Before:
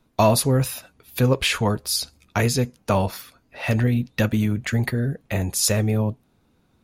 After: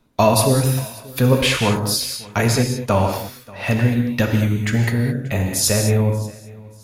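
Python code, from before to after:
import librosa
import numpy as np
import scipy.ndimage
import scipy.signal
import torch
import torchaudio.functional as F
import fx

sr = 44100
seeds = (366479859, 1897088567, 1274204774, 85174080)

p1 = x + fx.echo_feedback(x, sr, ms=584, feedback_pct=29, wet_db=-22, dry=0)
p2 = fx.rev_gated(p1, sr, seeds[0], gate_ms=240, shape='flat', drr_db=3.0)
y = F.gain(torch.from_numpy(p2), 2.0).numpy()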